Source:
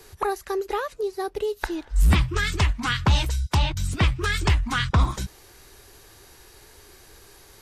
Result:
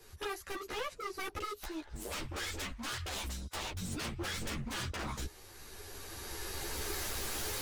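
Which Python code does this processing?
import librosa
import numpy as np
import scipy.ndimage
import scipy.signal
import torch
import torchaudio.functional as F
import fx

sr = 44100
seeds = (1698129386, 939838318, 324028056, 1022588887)

y = fx.recorder_agc(x, sr, target_db=-14.5, rise_db_per_s=12.0, max_gain_db=30)
y = 10.0 ** (-24.5 / 20.0) * (np.abs((y / 10.0 ** (-24.5 / 20.0) + 3.0) % 4.0 - 2.0) - 1.0)
y = fx.peak_eq(y, sr, hz=170.0, db=-9.0, octaves=1.4, at=(1.56, 3.81))
y = fx.ensemble(y, sr)
y = F.gain(torch.from_numpy(y), -5.5).numpy()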